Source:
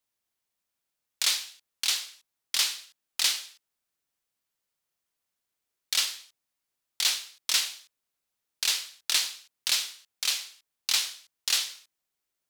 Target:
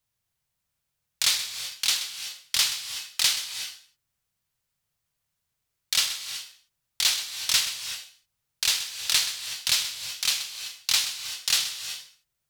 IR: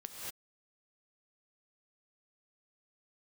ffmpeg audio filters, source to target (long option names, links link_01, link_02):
-filter_complex "[0:a]lowshelf=frequency=190:width_type=q:width=1.5:gain=11,asplit=2[link_01][link_02];[1:a]atrim=start_sample=2205,asetrate=41895,aresample=44100,adelay=128[link_03];[link_02][link_03]afir=irnorm=-1:irlink=0,volume=-7dB[link_04];[link_01][link_04]amix=inputs=2:normalize=0,volume=2.5dB"